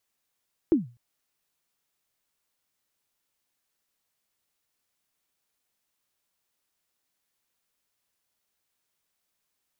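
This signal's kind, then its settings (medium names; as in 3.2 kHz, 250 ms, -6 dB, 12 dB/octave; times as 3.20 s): kick drum length 0.25 s, from 360 Hz, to 120 Hz, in 148 ms, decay 0.32 s, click off, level -13 dB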